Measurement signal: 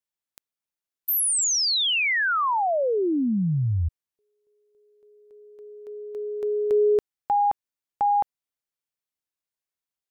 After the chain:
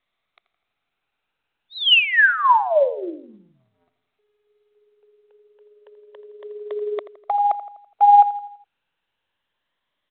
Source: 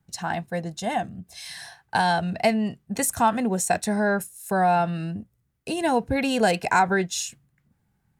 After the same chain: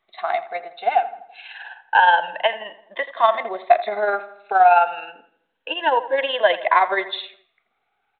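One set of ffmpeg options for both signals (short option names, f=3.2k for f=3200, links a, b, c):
-filter_complex "[0:a]afftfilt=real='re*pow(10,15/40*sin(2*PI*(1.2*log(max(b,1)*sr/1024/100)/log(2)-(0.28)*(pts-256)/sr)))':imag='im*pow(10,15/40*sin(2*PI*(1.2*log(max(b,1)*sr/1024/100)/log(2)-(0.28)*(pts-256)/sr)))':win_size=1024:overlap=0.75,tremolo=f=19:d=0.47,highpass=f=530:w=0.5412,highpass=f=530:w=1.3066,asplit=2[a][b];[b]adelay=83,lowpass=f=2.5k:p=1,volume=-14dB,asplit=2[c][d];[d]adelay=83,lowpass=f=2.5k:p=1,volume=0.51,asplit=2[e][f];[f]adelay=83,lowpass=f=2.5k:p=1,volume=0.51,asplit=2[g][h];[h]adelay=83,lowpass=f=2.5k:p=1,volume=0.51,asplit=2[i][j];[j]adelay=83,lowpass=f=2.5k:p=1,volume=0.51[k];[c][e][g][i][k]amix=inputs=5:normalize=0[l];[a][l]amix=inputs=2:normalize=0,volume=6dB" -ar 8000 -c:a pcm_mulaw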